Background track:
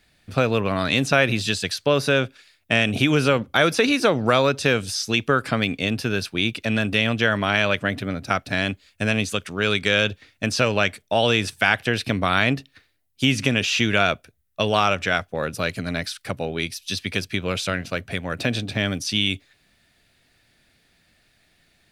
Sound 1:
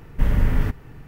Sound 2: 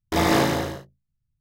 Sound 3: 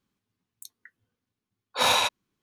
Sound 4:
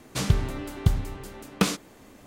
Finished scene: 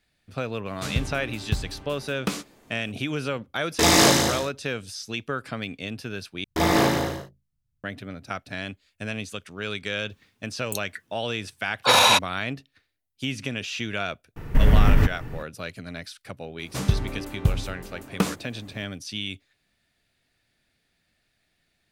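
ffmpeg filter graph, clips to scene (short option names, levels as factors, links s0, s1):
-filter_complex "[4:a]asplit=2[s0][s1];[2:a]asplit=2[s2][s3];[0:a]volume=0.316[s4];[s0]asplit=2[s5][s6];[s6]adelay=14,volume=0.266[s7];[s5][s7]amix=inputs=2:normalize=0[s8];[s2]equalizer=f=7100:t=o:w=2.2:g=13.5[s9];[3:a]alimiter=level_in=8.41:limit=0.891:release=50:level=0:latency=1[s10];[1:a]alimiter=level_in=4.22:limit=0.891:release=50:level=0:latency=1[s11];[s1]equalizer=f=4400:t=o:w=2.3:g=-5.5[s12];[s4]asplit=2[s13][s14];[s13]atrim=end=6.444[s15];[s3]atrim=end=1.4,asetpts=PTS-STARTPTS,volume=0.944[s16];[s14]atrim=start=7.836[s17];[s8]atrim=end=2.26,asetpts=PTS-STARTPTS,volume=0.562,afade=t=in:d=0.004:c=hsin,afade=t=out:st=2.256:d=0.004:c=hsin,adelay=660[s18];[s9]atrim=end=1.4,asetpts=PTS-STARTPTS,afade=t=in:d=0.004:c=hsin,afade=t=out:st=1.396:d=0.004:c=hsin,adelay=3670[s19];[s10]atrim=end=2.42,asetpts=PTS-STARTPTS,volume=0.501,afade=t=in:d=0.004:c=hsin,afade=t=out:st=2.416:d=0.004:c=hsin,adelay=445410S[s20];[s11]atrim=end=1.07,asetpts=PTS-STARTPTS,volume=0.473,afade=t=in:d=0.004:c=hsin,afade=t=out:st=1.066:d=0.004:c=hsin,adelay=14360[s21];[s12]atrim=end=2.26,asetpts=PTS-STARTPTS,afade=t=in:d=0.004:c=hsin,afade=t=out:st=2.256:d=0.004:c=hsin,adelay=16590[s22];[s15][s16]acrossfade=d=0.004:c1=hsin:c2=hsin[s23];[s23][s17]acrossfade=d=0.004:c1=hsin:c2=hsin[s24];[s24][s18][s19][s20][s21][s22]amix=inputs=6:normalize=0"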